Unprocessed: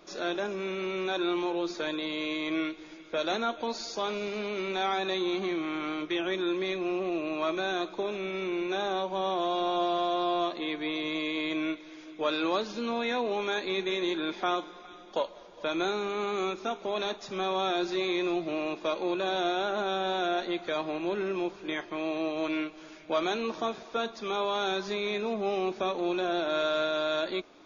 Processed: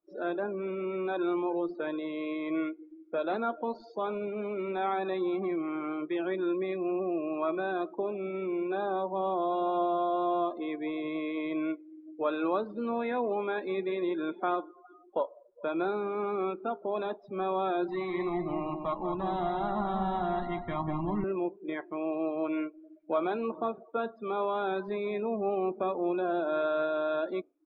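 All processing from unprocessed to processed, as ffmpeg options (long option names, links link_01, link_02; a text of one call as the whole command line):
ffmpeg -i in.wav -filter_complex "[0:a]asettb=1/sr,asplit=3[link_01][link_02][link_03];[link_01]atrim=end=17.884[link_04];[link_02]atrim=start=17.88:end=21.24,asetpts=PTS-STARTPTS,afade=type=in:duration=0.004:curve=qsin,afade=type=out:start_time=3.356:duration=0.004:curve=qsin,asubboost=boost=9:cutoff=150,aecho=1:1:1:0.7,atrim=end_sample=148176,aecho=1:1:193|386|579|772|965:0.501|0.221|0.097|0.0427|0.0188,atrim=end_sample=148176[link_05];[link_03]atrim=start=21.236[link_06];[link_04][link_05]acrossfade=duration=0.004:curve1=hsin:curve2=qsin[link_07];[link_07][link_06]acrossfade=duration=0.004:curve1=qsin:curve2=hsin,afftdn=noise_reduction=34:noise_floor=-37,lowpass=1600" out.wav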